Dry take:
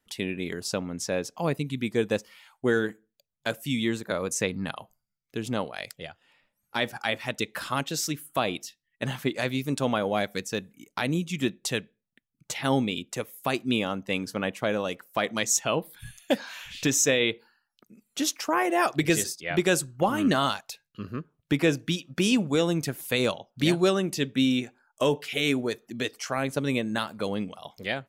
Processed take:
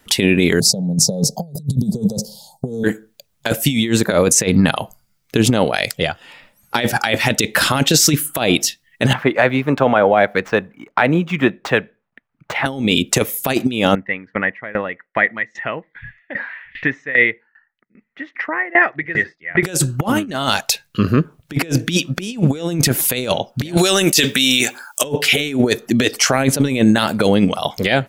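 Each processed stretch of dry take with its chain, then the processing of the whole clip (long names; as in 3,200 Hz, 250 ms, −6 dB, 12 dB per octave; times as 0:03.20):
0:00.60–0:02.84: elliptic band-stop filter 850–4,300 Hz, stop band 50 dB + parametric band 150 Hz +14 dB 1.2 octaves + phaser with its sweep stopped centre 310 Hz, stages 6
0:09.13–0:12.66: running median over 5 samples + three-way crossover with the lows and the highs turned down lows −12 dB, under 590 Hz, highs −23 dB, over 2,000 Hz
0:13.95–0:19.63: transistor ladder low-pass 2,000 Hz, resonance 85% + tremolo with a ramp in dB decaying 2.5 Hz, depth 21 dB
0:23.77–0:25.04: spectral tilt +4 dB per octave + compressor whose output falls as the input rises −31 dBFS
whole clip: dynamic equaliser 1,100 Hz, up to −6 dB, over −47 dBFS, Q 2.8; compressor whose output falls as the input rises −31 dBFS, ratio −0.5; boost into a limiter +18.5 dB; level −1 dB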